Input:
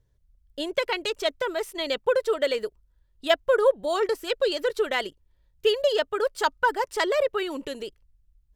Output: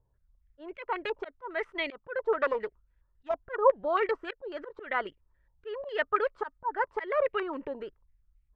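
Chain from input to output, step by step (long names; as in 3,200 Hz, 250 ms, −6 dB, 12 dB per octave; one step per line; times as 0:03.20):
0:02.33–0:03.56: phase distortion by the signal itself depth 0.41 ms
volume swells 191 ms
low-pass on a step sequencer 7.3 Hz 900–2,300 Hz
level −5 dB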